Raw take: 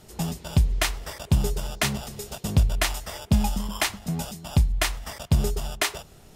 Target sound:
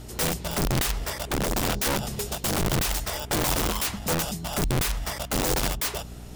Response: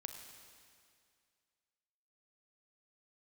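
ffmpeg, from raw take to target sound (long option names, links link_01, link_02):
-filter_complex "[0:a]asettb=1/sr,asplit=3[link_01][link_02][link_03];[link_01]atrim=end=1.294[link_04];[link_02]atrim=start=1.29:end=2.06,asetpts=PTS-STARTPTS,afade=type=in:duration=0.004:curve=qsin,afade=type=out:start_time=0.766:duration=0.004:curve=qsin,equalizer=frequency=190:width=0.62:gain=11[link_05];[link_03]atrim=start=2.056[link_06];[link_04][link_05]acrossfade=duration=0.004:curve1=hsin:curve2=qsin[link_07];[link_07][link_06]acrossfade=duration=0.004:curve1=qsin:curve2=hsin,acompressor=threshold=-23dB:ratio=16,aeval=exprs='val(0)+0.00501*(sin(2*PI*60*n/s)+sin(2*PI*2*60*n/s)/2+sin(2*PI*3*60*n/s)/3+sin(2*PI*4*60*n/s)/4+sin(2*PI*5*60*n/s)/5)':channel_layout=same,aeval=exprs='(mod(18.8*val(0)+1,2)-1)/18.8':channel_layout=same,volume=5.5dB"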